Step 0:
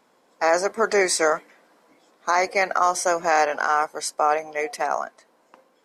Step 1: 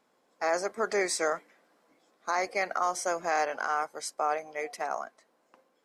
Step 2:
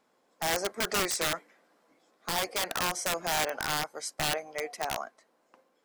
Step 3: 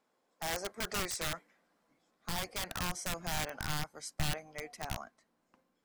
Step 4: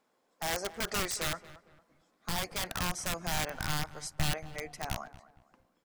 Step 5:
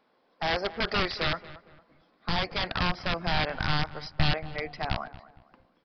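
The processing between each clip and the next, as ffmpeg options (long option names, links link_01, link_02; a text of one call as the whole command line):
ffmpeg -i in.wav -af "bandreject=frequency=950:width=18,volume=-8.5dB" out.wav
ffmpeg -i in.wav -af "aeval=exprs='(mod(12.6*val(0)+1,2)-1)/12.6':channel_layout=same" out.wav
ffmpeg -i in.wav -af "asubboost=boost=8:cutoff=170,volume=-7dB" out.wav
ffmpeg -i in.wav -filter_complex "[0:a]asplit=2[link_01][link_02];[link_02]adelay=229,lowpass=frequency=1900:poles=1,volume=-16dB,asplit=2[link_03][link_04];[link_04]adelay=229,lowpass=frequency=1900:poles=1,volume=0.36,asplit=2[link_05][link_06];[link_06]adelay=229,lowpass=frequency=1900:poles=1,volume=0.36[link_07];[link_01][link_03][link_05][link_07]amix=inputs=4:normalize=0,volume=3dB" out.wav
ffmpeg -i in.wav -af "aresample=11025,aresample=44100,volume=6.5dB" out.wav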